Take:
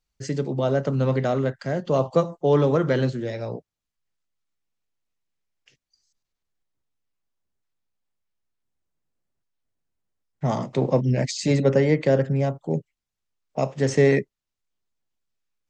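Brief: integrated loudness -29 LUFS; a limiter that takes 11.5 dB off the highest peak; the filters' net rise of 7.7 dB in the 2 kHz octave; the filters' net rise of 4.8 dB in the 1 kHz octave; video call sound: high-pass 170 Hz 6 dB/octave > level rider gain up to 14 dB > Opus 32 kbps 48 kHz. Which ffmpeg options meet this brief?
-af "equalizer=f=1000:t=o:g=5,equalizer=f=2000:t=o:g=7.5,alimiter=limit=0.15:level=0:latency=1,highpass=f=170:p=1,dynaudnorm=m=5.01,volume=0.841" -ar 48000 -c:a libopus -b:a 32k

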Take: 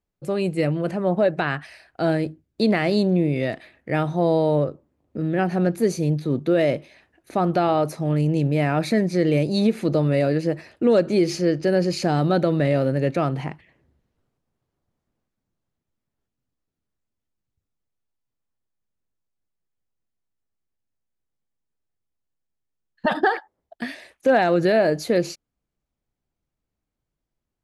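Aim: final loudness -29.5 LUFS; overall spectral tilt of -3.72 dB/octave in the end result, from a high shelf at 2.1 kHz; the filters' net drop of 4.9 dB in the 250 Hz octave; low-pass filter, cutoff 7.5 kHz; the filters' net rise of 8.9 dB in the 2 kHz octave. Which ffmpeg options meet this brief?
-af "lowpass=7500,equalizer=f=250:t=o:g=-8,equalizer=f=2000:t=o:g=8.5,highshelf=f=2100:g=5,volume=0.422"

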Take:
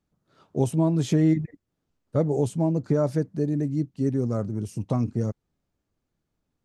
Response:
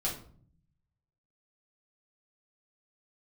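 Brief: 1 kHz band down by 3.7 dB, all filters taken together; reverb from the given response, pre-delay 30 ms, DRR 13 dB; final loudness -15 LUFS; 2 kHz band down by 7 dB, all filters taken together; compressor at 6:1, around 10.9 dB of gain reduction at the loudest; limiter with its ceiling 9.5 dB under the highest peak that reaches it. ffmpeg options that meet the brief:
-filter_complex "[0:a]equalizer=f=1000:t=o:g=-3.5,equalizer=f=2000:t=o:g=-7.5,acompressor=threshold=0.0355:ratio=6,alimiter=level_in=1.58:limit=0.0631:level=0:latency=1,volume=0.631,asplit=2[s0][s1];[1:a]atrim=start_sample=2205,adelay=30[s2];[s1][s2]afir=irnorm=-1:irlink=0,volume=0.133[s3];[s0][s3]amix=inputs=2:normalize=0,volume=12.6"

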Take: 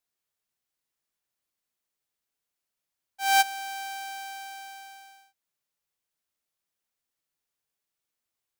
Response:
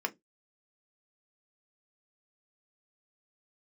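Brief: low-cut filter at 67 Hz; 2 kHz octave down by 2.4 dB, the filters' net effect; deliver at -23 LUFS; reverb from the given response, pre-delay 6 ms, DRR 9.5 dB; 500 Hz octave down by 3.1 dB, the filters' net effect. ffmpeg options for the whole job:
-filter_complex "[0:a]highpass=67,equalizer=f=500:t=o:g=-4.5,equalizer=f=2000:t=o:g=-3,asplit=2[s0][s1];[1:a]atrim=start_sample=2205,adelay=6[s2];[s1][s2]afir=irnorm=-1:irlink=0,volume=0.188[s3];[s0][s3]amix=inputs=2:normalize=0,volume=2"

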